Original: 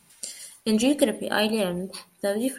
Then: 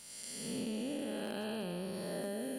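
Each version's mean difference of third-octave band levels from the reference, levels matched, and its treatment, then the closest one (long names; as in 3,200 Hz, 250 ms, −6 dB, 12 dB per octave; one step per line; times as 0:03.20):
10.5 dB: spectrum smeared in time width 392 ms
downward compressor 16 to 1, threshold −35 dBFS, peak gain reduction 12 dB
gain into a clipping stage and back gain 31 dB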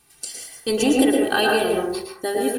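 5.5 dB: comb filter 2.6 ms, depth 80%
in parallel at −9.5 dB: bit reduction 7 bits
on the sum: dense smooth reverb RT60 0.59 s, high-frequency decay 0.3×, pre-delay 100 ms, DRR −0.5 dB
level −1.5 dB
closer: second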